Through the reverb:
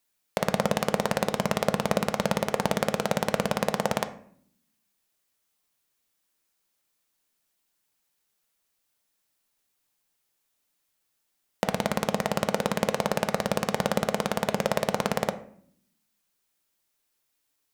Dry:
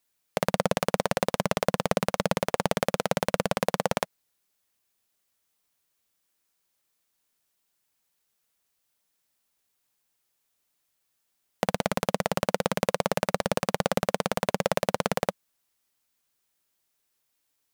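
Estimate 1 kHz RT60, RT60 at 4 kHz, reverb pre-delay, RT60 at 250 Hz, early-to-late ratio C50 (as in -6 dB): 0.55 s, 0.40 s, 3 ms, 1.0 s, 14.0 dB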